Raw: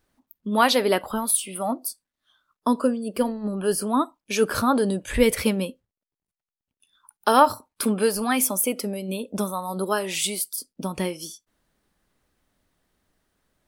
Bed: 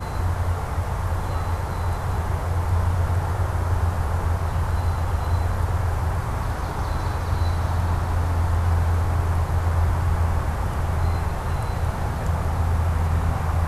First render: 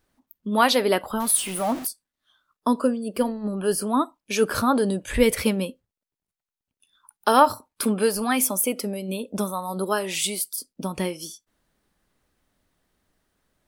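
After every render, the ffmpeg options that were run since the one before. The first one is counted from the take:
-filter_complex "[0:a]asettb=1/sr,asplit=3[a][b][c];[a]atrim=end=1.204[d];[b]atrim=start=1.2:end=1.87,asetpts=PTS-STARTPTS,afade=t=in:d=0.004:c=qsin,afade=t=out:st=0.666:d=0.004:c=qsin,aeval=exprs='val(0)+0.5*0.0316*sgn(val(0))':c=same[e];[c]atrim=start=1.866[f];[d][e]acrossfade=d=0.004:c1=hsin:c2=qsin[g];[g][f]acrossfade=d=0.004:c1=qsin:c2=hsin"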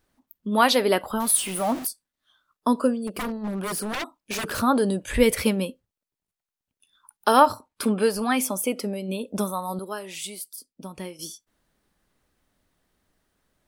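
-filter_complex "[0:a]asettb=1/sr,asplit=3[a][b][c];[a]atrim=end=3.074[d];[b]atrim=start=3.07:end=4.6,asetpts=PTS-STARTPTS,afade=t=in:d=0.004:c=qsin,afade=t=out:st=1.526:d=0.004:c=qsin,aeval=exprs='0.0631*(abs(mod(val(0)/0.0631+3,4)-2)-1)':c=same[e];[c]atrim=start=4.596[f];[d][e]acrossfade=d=0.004:c1=hsin:c2=qsin[g];[g][f]acrossfade=d=0.004:c1=qsin:c2=hsin,asettb=1/sr,asplit=3[h][i][j];[h]atrim=end=7.464[k];[i]atrim=start=7.46:end=9.21,asetpts=PTS-STARTPTS,afade=t=in:d=0.004:c=qsin,afade=t=out:st=1.746:d=0.004:c=qsin,highshelf=f=9.6k:g=-10.5[l];[j]atrim=start=9.206[m];[k][l]acrossfade=d=0.004:c1=hsin:c2=qsin[n];[n][m]acrossfade=d=0.004:c1=qsin:c2=hsin,asplit=3[o][p][q];[o]atrim=end=9.792[r];[p]atrim=start=9.788:end=11.192,asetpts=PTS-STARTPTS,volume=-9dB[s];[q]atrim=start=11.188[t];[r][s]acrossfade=d=0.004:c1=hsin:c2=hsin[u];[u][t]acrossfade=d=0.004:c1=hsin:c2=hsin"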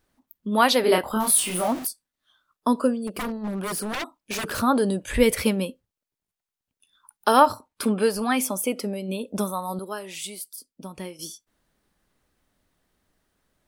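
-filter_complex "[0:a]asettb=1/sr,asplit=3[a][b][c];[a]atrim=end=0.814[d];[b]atrim=start=0.81:end=1.68,asetpts=PTS-STARTPTS,afade=t=in:d=0.004:c=qsin,afade=t=out:st=0.866:d=0.004:c=qsin,asplit=2[e][f];[f]adelay=28,volume=-2.5dB[g];[e][g]amix=inputs=2:normalize=0,atrim=end_sample=38367[h];[c]atrim=start=1.676[i];[d][h]acrossfade=d=0.004:c1=hsin:c2=qsin[j];[j][i]acrossfade=d=0.004:c1=qsin:c2=hsin"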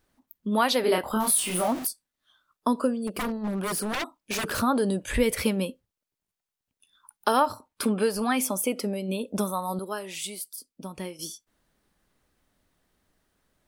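-af "acompressor=threshold=-22dB:ratio=2"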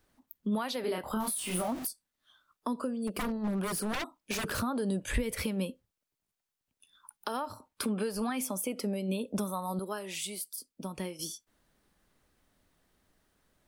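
-filter_complex "[0:a]alimiter=limit=-17.5dB:level=0:latency=1:release=213,acrossover=split=180[a][b];[b]acompressor=threshold=-36dB:ratio=2[c];[a][c]amix=inputs=2:normalize=0"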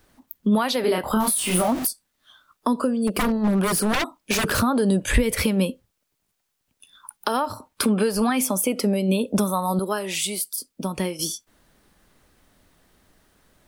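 -af "volume=11.5dB"

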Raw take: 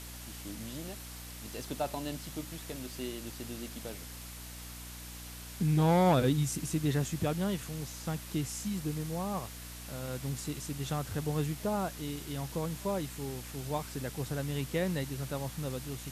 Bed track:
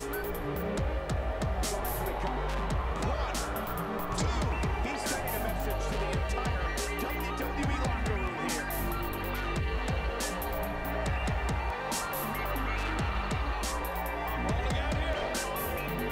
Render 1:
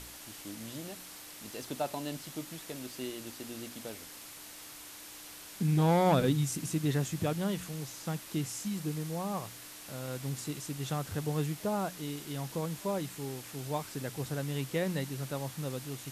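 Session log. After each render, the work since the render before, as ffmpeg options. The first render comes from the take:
-af "bandreject=f=60:t=h:w=4,bandreject=f=120:t=h:w=4,bandreject=f=180:t=h:w=4,bandreject=f=240:t=h:w=4"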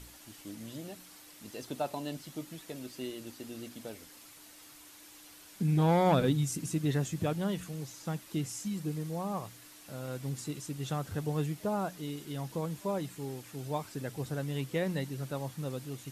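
-af "afftdn=nr=7:nf=-48"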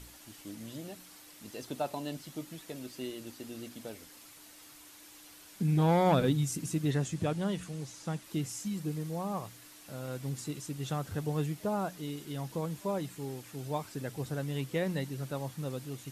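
-filter_complex "[0:a]asettb=1/sr,asplit=3[a][b][c];[a]atrim=end=6.914[d];[b]atrim=start=6.91:end=8.24,asetpts=PTS-STARTPTS,afade=t=in:d=0.004:c=qsin,afade=t=out:st=1.326:d=0.004:c=qsin,lowpass=f=11k:w=0.5412,lowpass=f=11k:w=1.3066[e];[c]atrim=start=8.236[f];[d][e]acrossfade=d=0.004:c1=hsin:c2=qsin[g];[g][f]acrossfade=d=0.004:c1=qsin:c2=hsin"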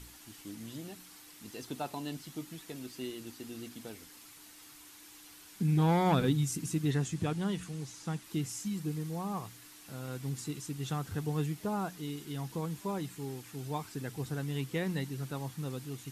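-af "equalizer=f=580:w=3.9:g=-9.5"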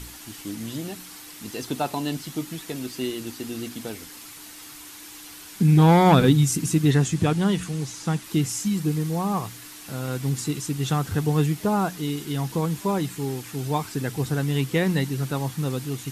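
-af "volume=11.5dB"

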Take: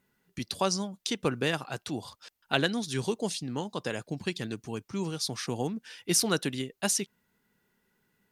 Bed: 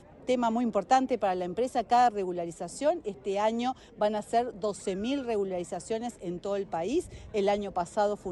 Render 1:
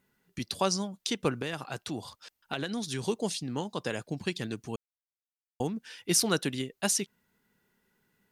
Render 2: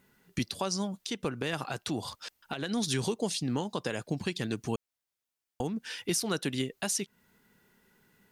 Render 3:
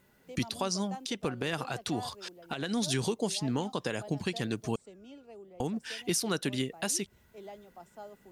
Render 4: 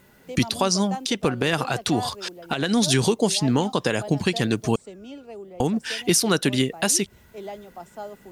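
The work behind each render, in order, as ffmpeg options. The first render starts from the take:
-filter_complex "[0:a]asettb=1/sr,asplit=3[a][b][c];[a]atrim=end=1.314[d];[b]atrim=start=1.31:end=3.07,asetpts=PTS-STARTPTS,afade=t=in:d=0.004:c=qsin,afade=t=out:st=1.756:d=0.004:c=qsin,acompressor=threshold=-29dB:ratio=5:attack=3.2:release=140:knee=1:detection=peak[e];[c]atrim=start=3.066[f];[d][e]acrossfade=d=0.004:c1=hsin:c2=qsin[g];[g][f]acrossfade=d=0.004:c1=qsin:c2=hsin,asplit=3[h][i][j];[h]atrim=end=4.76,asetpts=PTS-STARTPTS,afade=t=out:st=4.756:d=0.004:c=hsin[k];[i]atrim=start=4.76:end=5.6,asetpts=PTS-STARTPTS,volume=0[l];[j]atrim=start=5.6,asetpts=PTS-STARTPTS,afade=t=in:d=0.004:c=hsin[m];[k][l][m]concat=n=3:v=0:a=1"
-filter_complex "[0:a]asplit=2[a][b];[b]acompressor=threshold=-35dB:ratio=6,volume=2dB[c];[a][c]amix=inputs=2:normalize=0,alimiter=limit=-19dB:level=0:latency=1:release=302"
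-filter_complex "[1:a]volume=-20dB[a];[0:a][a]amix=inputs=2:normalize=0"
-af "volume=10.5dB"

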